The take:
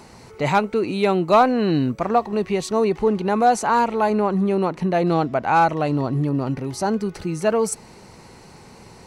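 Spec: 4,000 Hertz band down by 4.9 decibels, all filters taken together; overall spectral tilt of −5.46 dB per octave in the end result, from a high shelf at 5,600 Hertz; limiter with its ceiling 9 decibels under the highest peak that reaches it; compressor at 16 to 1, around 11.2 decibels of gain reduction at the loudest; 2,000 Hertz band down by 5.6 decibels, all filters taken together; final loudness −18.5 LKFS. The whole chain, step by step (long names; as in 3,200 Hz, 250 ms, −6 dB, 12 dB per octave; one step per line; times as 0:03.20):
parametric band 2,000 Hz −8 dB
parametric band 4,000 Hz −5.5 dB
high-shelf EQ 5,600 Hz +5 dB
downward compressor 16 to 1, threshold −24 dBFS
level +14 dB
brickwall limiter −10 dBFS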